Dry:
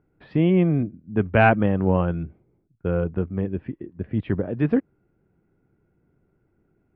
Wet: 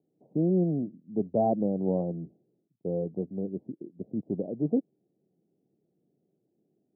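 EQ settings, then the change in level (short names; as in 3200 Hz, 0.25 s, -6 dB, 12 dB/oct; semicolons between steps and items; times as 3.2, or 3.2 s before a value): HPF 160 Hz 24 dB/oct; steep low-pass 740 Hz 48 dB/oct; -5.5 dB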